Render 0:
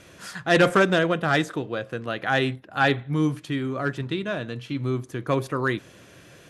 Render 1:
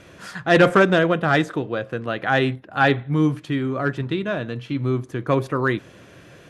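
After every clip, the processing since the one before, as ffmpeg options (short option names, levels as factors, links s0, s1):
-af "highshelf=f=4100:g=-9,volume=1.58"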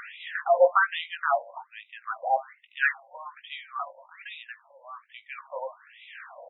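-filter_complex "[0:a]acompressor=mode=upward:threshold=0.0794:ratio=2.5,asplit=2[s0][s1];[s1]adelay=19,volume=0.398[s2];[s0][s2]amix=inputs=2:normalize=0,afftfilt=real='re*between(b*sr/1024,690*pow(2800/690,0.5+0.5*sin(2*PI*1.2*pts/sr))/1.41,690*pow(2800/690,0.5+0.5*sin(2*PI*1.2*pts/sr))*1.41)':imag='im*between(b*sr/1024,690*pow(2800/690,0.5+0.5*sin(2*PI*1.2*pts/sr))/1.41,690*pow(2800/690,0.5+0.5*sin(2*PI*1.2*pts/sr))*1.41)':win_size=1024:overlap=0.75,volume=0.841"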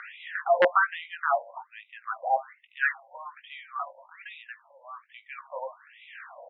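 -filter_complex "[0:a]aeval=exprs='(mod(2.99*val(0)+1,2)-1)/2.99':c=same,acrossover=split=2500[s0][s1];[s1]acompressor=threshold=0.00708:ratio=4:attack=1:release=60[s2];[s0][s2]amix=inputs=2:normalize=0,highpass=430,lowpass=3200"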